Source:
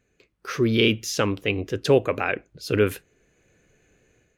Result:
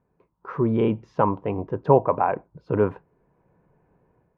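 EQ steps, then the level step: peaking EQ 160 Hz +9 dB 0.74 oct; dynamic bell 680 Hz, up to +5 dB, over -37 dBFS, Q 2; resonant low-pass 960 Hz, resonance Q 8.5; -4.0 dB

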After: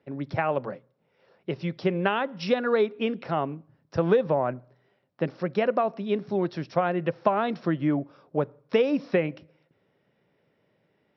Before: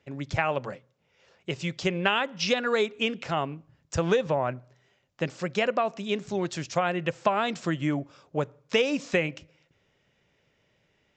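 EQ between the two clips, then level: high-pass 160 Hz 12 dB/octave; rippled Chebyshev low-pass 5.6 kHz, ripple 3 dB; tilt shelf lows +7.5 dB, about 1.2 kHz; 0.0 dB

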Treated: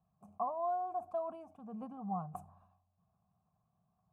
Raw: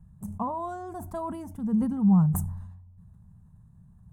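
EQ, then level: vowel filter a; +3.5 dB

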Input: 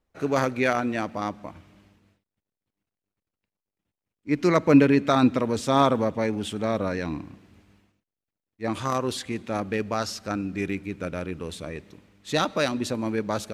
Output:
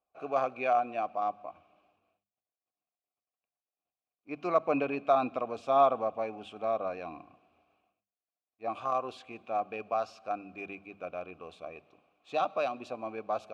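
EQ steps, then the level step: vowel filter a; bass shelf 96 Hz +12 dB; hum notches 50/100/150/200 Hz; +4.0 dB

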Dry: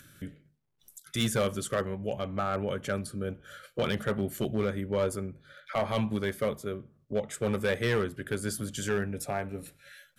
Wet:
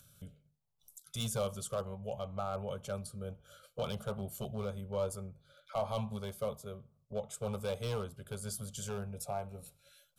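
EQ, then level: static phaser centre 760 Hz, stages 4; -4.0 dB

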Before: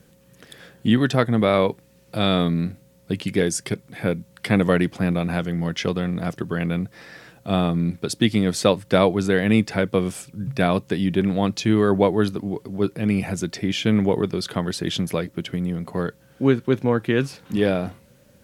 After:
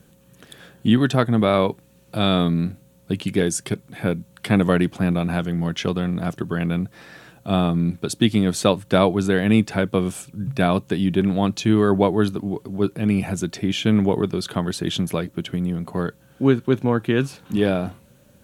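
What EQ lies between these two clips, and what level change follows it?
graphic EQ with 31 bands 500 Hz -4 dB, 2 kHz -6 dB, 5 kHz -6 dB; +1.5 dB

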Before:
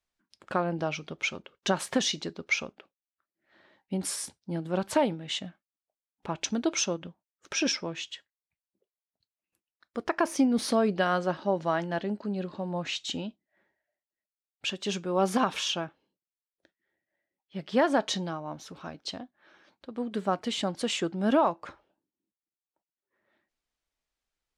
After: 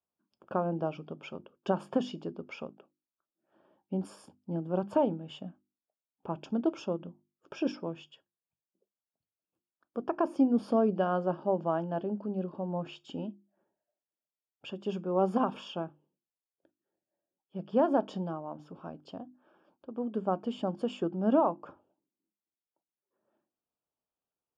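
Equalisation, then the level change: boxcar filter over 22 samples; high-pass 120 Hz; hum notches 50/100/150/200/250/300/350 Hz; 0.0 dB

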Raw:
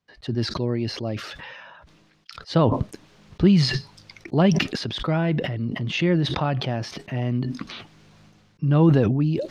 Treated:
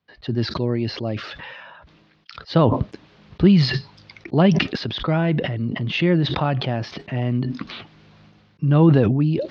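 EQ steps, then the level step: high-pass 40 Hz; low-pass 4.7 kHz 24 dB/octave; +2.5 dB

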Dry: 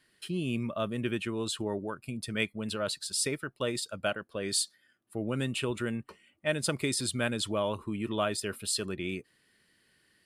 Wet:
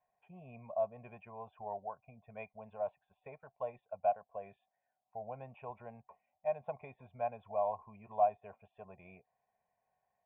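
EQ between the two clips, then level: cascade formant filter a; static phaser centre 1.2 kHz, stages 6; +11.5 dB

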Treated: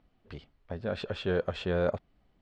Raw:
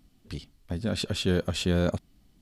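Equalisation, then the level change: low-pass 2.1 kHz 12 dB/octave; resonant low shelf 370 Hz -7 dB, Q 1.5; 0.0 dB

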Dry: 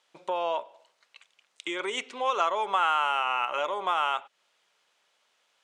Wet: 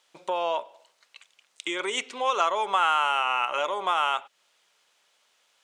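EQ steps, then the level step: treble shelf 4.5 kHz +6.5 dB; +1.5 dB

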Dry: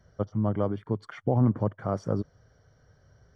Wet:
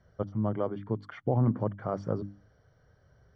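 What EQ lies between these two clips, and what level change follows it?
low-pass 4.3 kHz 12 dB/octave; hum notches 50/100/150/200/250/300 Hz; -2.0 dB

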